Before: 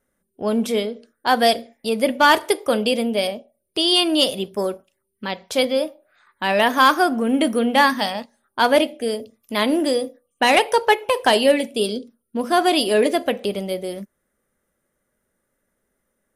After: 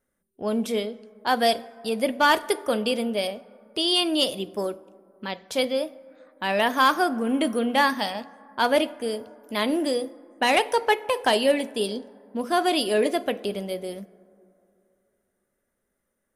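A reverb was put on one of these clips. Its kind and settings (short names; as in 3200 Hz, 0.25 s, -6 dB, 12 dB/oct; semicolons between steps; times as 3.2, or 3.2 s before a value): plate-style reverb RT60 2.8 s, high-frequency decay 0.3×, DRR 19.5 dB; gain -5 dB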